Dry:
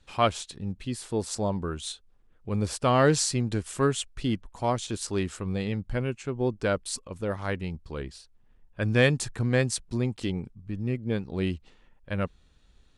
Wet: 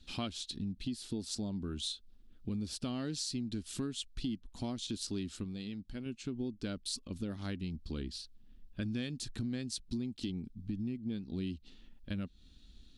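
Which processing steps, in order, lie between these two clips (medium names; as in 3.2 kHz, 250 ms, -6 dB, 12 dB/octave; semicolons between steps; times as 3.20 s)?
graphic EQ 125/250/500/1000/2000/4000/8000 Hz -7/+8/-11/-12/-8/+7/-6 dB; compression 6:1, threshold -39 dBFS, peak gain reduction 18.5 dB; 5.44–6.06 s: bass shelf 210 Hz -8 dB; trim +3.5 dB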